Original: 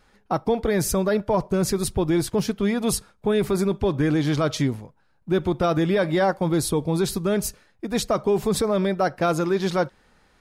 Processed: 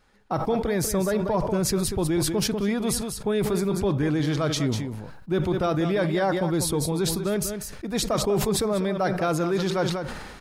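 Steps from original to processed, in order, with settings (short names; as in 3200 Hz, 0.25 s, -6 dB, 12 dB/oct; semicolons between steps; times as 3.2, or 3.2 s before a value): echo 0.193 s -11 dB; sustainer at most 39 dB/s; gain -3.5 dB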